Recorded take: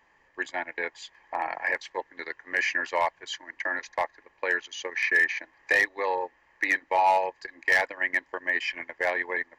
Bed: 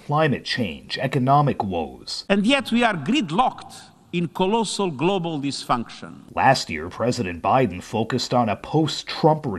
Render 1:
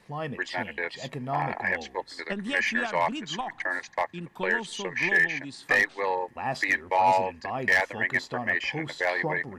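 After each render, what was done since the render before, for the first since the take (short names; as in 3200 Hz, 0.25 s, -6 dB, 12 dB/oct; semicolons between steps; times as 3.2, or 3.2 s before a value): add bed -14.5 dB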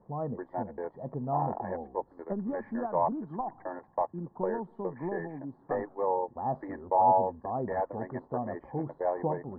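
inverse Chebyshev low-pass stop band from 2500 Hz, stop band 50 dB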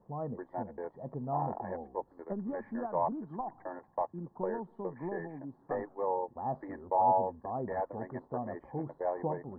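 gain -3.5 dB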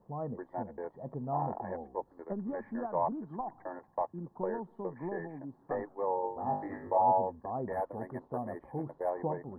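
6.22–6.98 flutter echo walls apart 3.4 m, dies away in 0.47 s; 7.73–9.1 decimation joined by straight lines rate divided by 4×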